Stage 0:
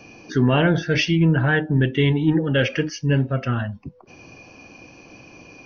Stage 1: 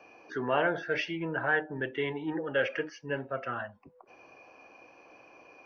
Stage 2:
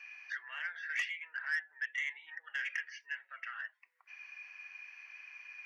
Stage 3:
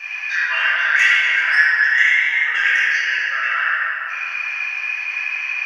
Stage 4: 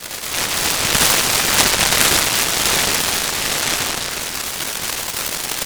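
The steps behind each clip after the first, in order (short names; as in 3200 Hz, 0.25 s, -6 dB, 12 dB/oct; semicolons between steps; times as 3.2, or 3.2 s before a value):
three-band isolator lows -22 dB, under 430 Hz, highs -16 dB, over 2100 Hz; gain -3.5 dB
compressor 2:1, threshold -46 dBFS, peak gain reduction 13 dB; ladder high-pass 1800 Hz, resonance 75%; soft clip -39.5 dBFS, distortion -16 dB; gain +13 dB
in parallel at +3 dB: compressor, threshold -46 dBFS, peak gain reduction 14.5 dB; on the sum: delay with a stepping band-pass 0.125 s, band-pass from 3200 Hz, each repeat 0.7 oct, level -8.5 dB; reverb RT60 3.6 s, pre-delay 5 ms, DRR -12 dB; gain +8.5 dB
echo 0.347 s -7 dB; noise-modulated delay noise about 1500 Hz, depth 0.29 ms; gain -1 dB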